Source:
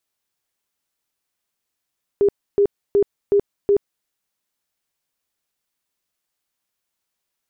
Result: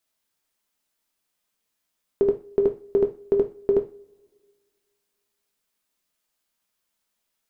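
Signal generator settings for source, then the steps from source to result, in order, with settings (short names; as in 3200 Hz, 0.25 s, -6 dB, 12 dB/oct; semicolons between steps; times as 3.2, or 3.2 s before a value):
tone bursts 404 Hz, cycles 31, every 0.37 s, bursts 5, -11.5 dBFS
two-slope reverb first 0.32 s, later 1.9 s, from -28 dB, DRR 4 dB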